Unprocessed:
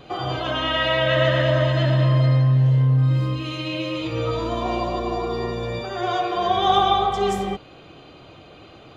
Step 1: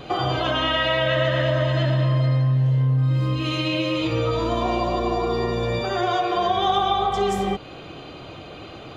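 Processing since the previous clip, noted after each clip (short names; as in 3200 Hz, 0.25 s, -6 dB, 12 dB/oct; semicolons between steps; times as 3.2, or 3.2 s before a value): compressor 3:1, threshold -27 dBFS, peak gain reduction 10.5 dB; gain +6.5 dB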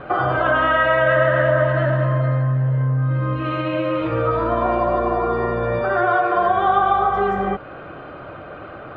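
synth low-pass 1500 Hz, resonance Q 3.7; bell 580 Hz +7 dB 0.3 oct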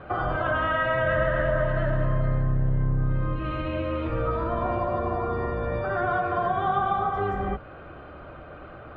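octaver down 2 oct, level +2 dB; gain -8 dB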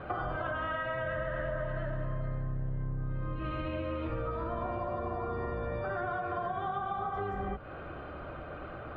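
compressor 6:1, threshold -32 dBFS, peak gain reduction 12 dB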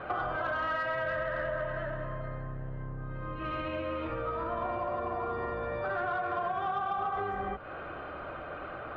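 overdrive pedal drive 10 dB, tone 3300 Hz, clips at -21.5 dBFS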